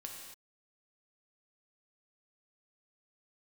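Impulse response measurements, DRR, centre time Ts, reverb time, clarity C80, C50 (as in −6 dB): 0.0 dB, 56 ms, non-exponential decay, 4.0 dB, 2.5 dB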